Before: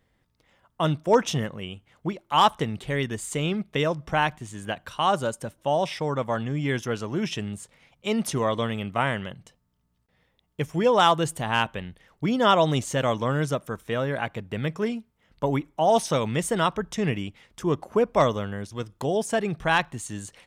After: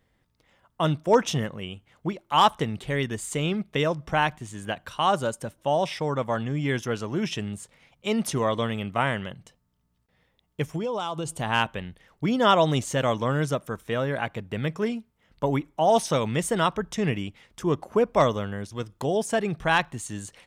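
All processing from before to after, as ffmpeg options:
-filter_complex "[0:a]asettb=1/sr,asplit=3[s0][s1][s2];[s0]atrim=end=10.764[s3];[s1]atrim=start=10.76:end=11.39,asetpts=PTS-STARTPTS,afade=t=in:d=0.004:c=qsin,afade=t=out:st=0.626:d=0.004:c=qsin,lowpass=11000,acompressor=threshold=0.0562:ratio=8:attack=3.2:release=140:knee=1:detection=peak,equalizer=f=1800:w=4.1:g=-14[s4];[s2]atrim=start=11.386[s5];[s3][s4]acrossfade=d=0.004:c1=hsin:c2=qsin[s6];[s6][s5]acrossfade=d=0.004:c1=qsin:c2=hsin"

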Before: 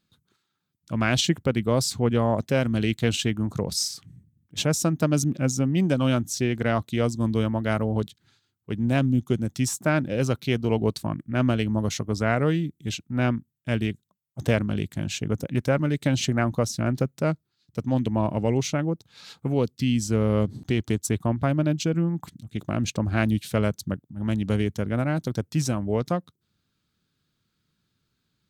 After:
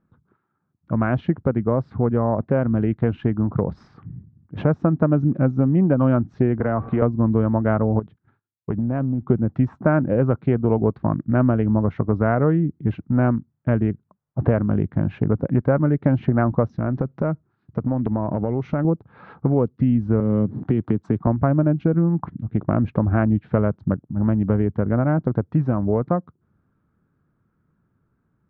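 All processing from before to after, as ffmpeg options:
-filter_complex "[0:a]asettb=1/sr,asplit=3[s0][s1][s2];[s0]atrim=end=6.604[s3];[s1]atrim=start=6.6:end=7.02,asetpts=PTS-STARTPTS,afade=t=in:d=0.004:c=qsin,afade=t=out:st=0.416:d=0.004:c=qsin,aeval=exprs='val(0)+0.5*0.0158*sgn(val(0))':c=same,bandreject=f=382:t=h:w=4,bandreject=f=764:t=h:w=4,bandreject=f=1146:t=h:w=4,bandreject=f=1528:t=h:w=4,bandreject=f=1910:t=h:w=4,bandreject=f=2292:t=h:w=4,bandreject=f=2674:t=h:w=4,bandreject=f=3056:t=h:w=4,bandreject=f=3438:t=h:w=4,bandreject=f=3820:t=h:w=4,bandreject=f=4202:t=h:w=4,bandreject=f=4584:t=h:w=4,bandreject=f=4966:t=h:w=4,bandreject=f=5348:t=h:w=4,bandreject=f=5730:t=h:w=4,bandreject=f=6112:t=h:w=4,bandreject=f=6494:t=h:w=4,bandreject=f=6876:t=h:w=4,bandreject=f=7258:t=h:w=4,bandreject=f=7640:t=h:w=4,bandreject=f=8022:t=h:w=4,bandreject=f=8404:t=h:w=4,bandreject=f=8786:t=h:w=4,bandreject=f=9168:t=h:w=4,bandreject=f=9550:t=h:w=4,bandreject=f=9932:t=h:w=4,bandreject=f=10314:t=h:w=4,bandreject=f=10696:t=h:w=4,bandreject=f=11078:t=h:w=4,bandreject=f=11460:t=h:w=4,bandreject=f=11842:t=h:w=4,bandreject=f=12224:t=h:w=4,bandreject=f=12606:t=h:w=4,bandreject=f=12988:t=h:w=4,bandreject=f=13370:t=h:w=4,bandreject=f=13752:t=h:w=4,bandreject=f=14134:t=h:w=4,bandreject=f=14516:t=h:w=4,bandreject=f=14898:t=h:w=4,acrossover=split=340|3800[s4][s5][s6];[s4]acompressor=threshold=0.0224:ratio=4[s7];[s5]acompressor=threshold=0.0282:ratio=4[s8];[s6]acompressor=threshold=0.00178:ratio=4[s9];[s7][s8][s9]amix=inputs=3:normalize=0[s10];[s2]atrim=start=7.016[s11];[s3][s10]acrossfade=d=0.004:c1=hsin:c2=qsin[s12];[s12][s11]acrossfade=d=0.004:c1=qsin:c2=hsin,asettb=1/sr,asplit=3[s13][s14][s15];[s13]atrim=end=7.994[s16];[s14]atrim=start=7.99:end=9.26,asetpts=PTS-STARTPTS,afade=t=in:d=0.004:c=qsin,afade=t=out:st=1.266:d=0.004:c=qsin,agate=range=0.0224:threshold=0.00158:ratio=3:release=100:detection=peak,acompressor=threshold=0.0251:ratio=6:attack=3.2:release=140:knee=1:detection=peak[s17];[s15]atrim=start=9.256[s18];[s16][s17]acrossfade=d=0.004:c1=hsin:c2=qsin[s19];[s19][s18]acrossfade=d=0.004:c1=qsin:c2=hsin,asettb=1/sr,asplit=3[s20][s21][s22];[s20]atrim=end=16.694[s23];[s21]atrim=start=16.69:end=18.85,asetpts=PTS-STARTPTS,afade=t=in:d=0.004:c=qsin,afade=t=out:st=2.156:d=0.004:c=qsin,acompressor=threshold=0.0355:ratio=5:attack=3.2:release=140:knee=1:detection=peak,lowpass=f=6000:t=q:w=3.6[s24];[s22]atrim=start=18.846[s25];[s23][s24]acrossfade=d=0.004:c1=hsin:c2=qsin[s26];[s26][s25]acrossfade=d=0.004:c1=qsin:c2=hsin,asettb=1/sr,asplit=3[s27][s28][s29];[s27]atrim=end=20.204[s30];[s28]atrim=start=20.2:end=21.27,asetpts=PTS-STARTPTS,afade=t=in:d=0.004:c=qsin,afade=t=out:st=1.066:d=0.004:c=qsin,highpass=130,highshelf=f=3600:g=11.5,acrossover=split=360|3000[s31][s32][s33];[s32]acompressor=threshold=0.0141:ratio=6:attack=3.2:release=140:knee=2.83:detection=peak[s34];[s31][s34][s33]amix=inputs=3:normalize=0[s35];[s29]atrim=start=21.266[s36];[s30][s35]acrossfade=d=0.004:c1=hsin:c2=qsin[s37];[s37][s36]acrossfade=d=0.004:c1=qsin:c2=hsin,dynaudnorm=f=880:g=9:m=2.24,lowpass=f=1400:w=0.5412,lowpass=f=1400:w=1.3066,acompressor=threshold=0.0447:ratio=2.5,volume=2.66"

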